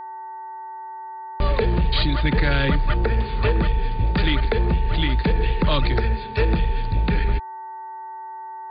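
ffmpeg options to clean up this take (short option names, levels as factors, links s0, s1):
-af "bandreject=f=380.4:t=h:w=4,bandreject=f=760.8:t=h:w=4,bandreject=f=1141.2:t=h:w=4,bandreject=f=1521.6:t=h:w=4,bandreject=f=1902:t=h:w=4,bandreject=f=890:w=30"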